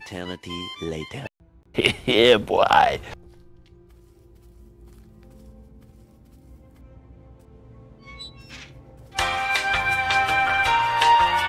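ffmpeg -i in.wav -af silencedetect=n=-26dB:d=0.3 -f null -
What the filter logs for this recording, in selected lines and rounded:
silence_start: 1.26
silence_end: 1.78 | silence_duration: 0.51
silence_start: 3.14
silence_end: 9.17 | silence_duration: 6.04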